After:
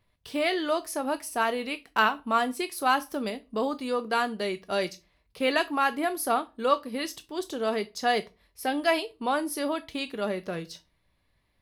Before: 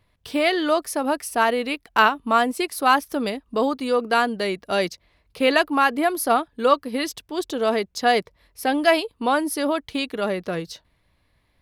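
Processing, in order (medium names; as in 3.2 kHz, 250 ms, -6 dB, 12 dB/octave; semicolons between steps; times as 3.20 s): on a send: treble shelf 2.2 kHz +11.5 dB + reverberation RT60 0.30 s, pre-delay 5 ms, DRR 10 dB; on the sum: trim -6.5 dB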